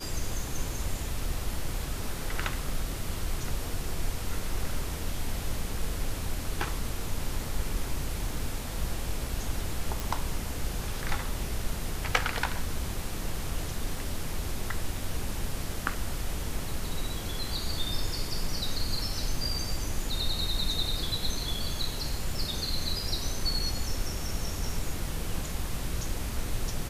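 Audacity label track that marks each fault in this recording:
10.000000	10.000000	pop

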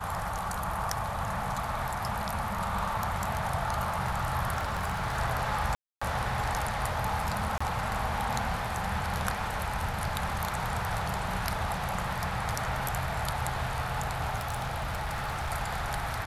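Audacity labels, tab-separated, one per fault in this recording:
4.570000	5.190000	clipped -27.5 dBFS
5.750000	6.010000	dropout 265 ms
7.580000	7.610000	dropout 25 ms
14.360000	15.510000	clipped -28 dBFS

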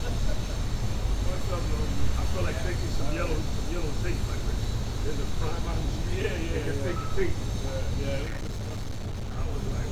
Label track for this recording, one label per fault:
8.240000	9.380000	clipped -29 dBFS

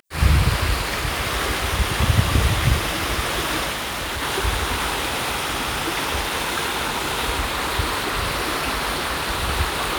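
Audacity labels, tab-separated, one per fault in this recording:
3.720000	4.230000	clipped -23.5 dBFS

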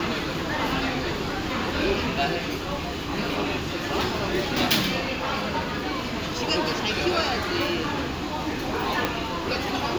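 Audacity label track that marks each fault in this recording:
9.050000	9.050000	pop -8 dBFS

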